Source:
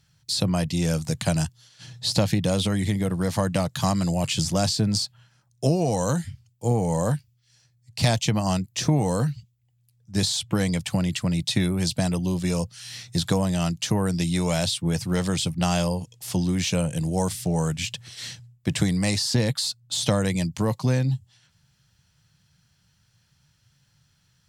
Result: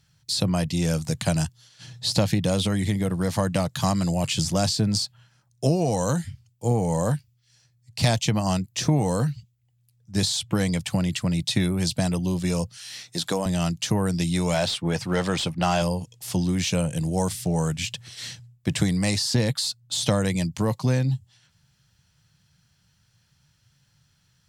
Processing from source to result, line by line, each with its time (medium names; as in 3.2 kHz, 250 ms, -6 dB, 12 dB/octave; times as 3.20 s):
12.77–13.46 s: high-pass 260 Hz
14.54–15.82 s: overdrive pedal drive 14 dB, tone 1.8 kHz, clips at -9 dBFS